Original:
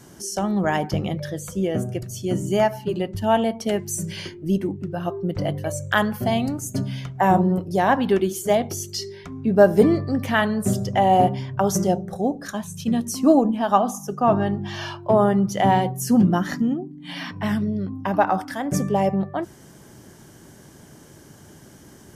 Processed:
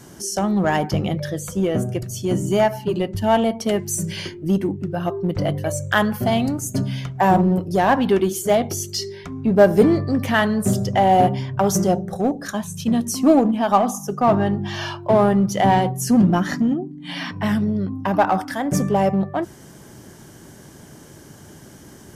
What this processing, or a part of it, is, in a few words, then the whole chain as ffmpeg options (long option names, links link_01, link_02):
parallel distortion: -filter_complex "[0:a]asettb=1/sr,asplit=3[link_01][link_02][link_03];[link_01]atrim=end=15.664[link_04];[link_02]atrim=start=15.66:end=17.32,asetpts=PTS-STARTPTS,afade=type=in:duration=0.004:curve=qsin,afade=type=out:start_time=1.656:duration=0.004:curve=qsin,lowpass=12000[link_05];[link_03]atrim=start=17.316[link_06];[link_04][link_05]acrossfade=duration=0.004:curve1=hsin:curve2=qsin[link_07];[link_07][link_06]acrossfade=duration=0.004:curve1=qsin:curve2=hsin,asplit=2[link_08][link_09];[link_09]asoftclip=type=hard:threshold=-21dB,volume=-6dB[link_10];[link_08][link_10]amix=inputs=2:normalize=0"